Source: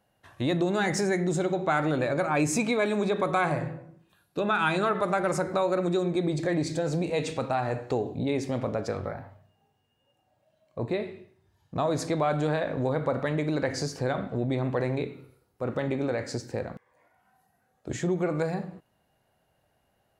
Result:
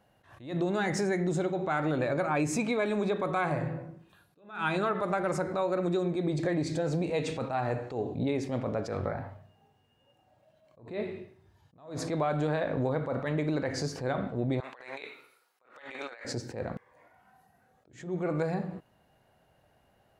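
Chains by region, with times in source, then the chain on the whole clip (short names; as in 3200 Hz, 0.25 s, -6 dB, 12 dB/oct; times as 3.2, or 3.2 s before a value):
14.6–16.25 HPF 1200 Hz + negative-ratio compressor -45 dBFS, ratio -0.5
whole clip: high shelf 4800 Hz -6.5 dB; compressor 2.5:1, threshold -34 dBFS; attack slew limiter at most 130 dB/s; gain +5 dB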